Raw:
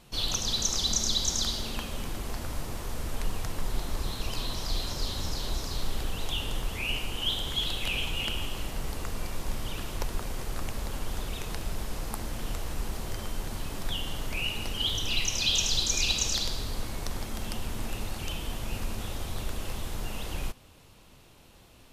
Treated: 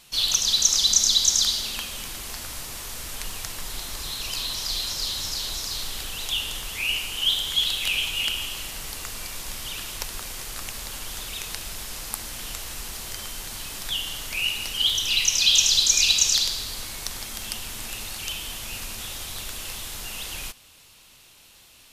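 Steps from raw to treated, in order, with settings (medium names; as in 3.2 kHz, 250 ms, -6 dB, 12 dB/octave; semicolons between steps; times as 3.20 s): tilt shelf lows -9 dB, about 1.3 kHz; trim +1.5 dB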